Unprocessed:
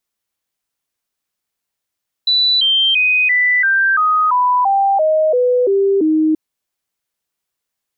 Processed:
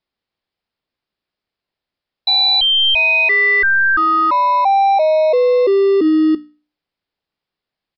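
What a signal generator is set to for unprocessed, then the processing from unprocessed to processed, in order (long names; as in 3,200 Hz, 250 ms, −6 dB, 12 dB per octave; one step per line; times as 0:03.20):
stepped sweep 3,970 Hz down, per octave 3, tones 12, 0.34 s, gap 0.00 s −10.5 dBFS
mains-hum notches 60/120/180/240/300 Hz
in parallel at −12 dB: decimation without filtering 28×
on the sum: downsampling to 11,025 Hz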